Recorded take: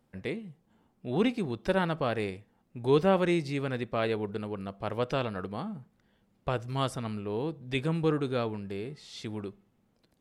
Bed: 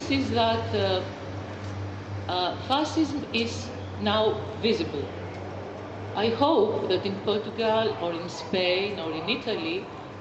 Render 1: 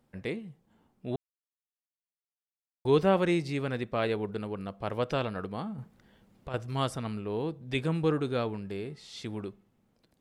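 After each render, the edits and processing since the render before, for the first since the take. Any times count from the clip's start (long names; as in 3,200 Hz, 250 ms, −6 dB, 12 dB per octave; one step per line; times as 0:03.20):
0:01.16–0:02.85: silence
0:05.78–0:06.54: compressor whose output falls as the input rises −34 dBFS, ratio −0.5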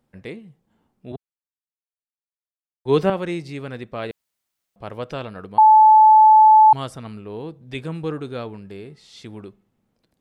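0:01.12–0:03.10: multiband upward and downward expander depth 70%
0:04.11–0:04.76: fill with room tone
0:05.58–0:06.73: beep over 867 Hz −7 dBFS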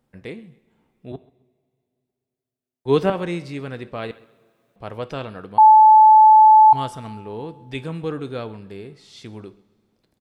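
repeating echo 132 ms, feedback 30%, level −22 dB
coupled-rooms reverb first 0.42 s, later 2.9 s, from −20 dB, DRR 13 dB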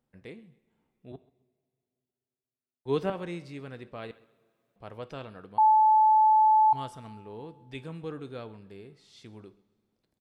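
level −10.5 dB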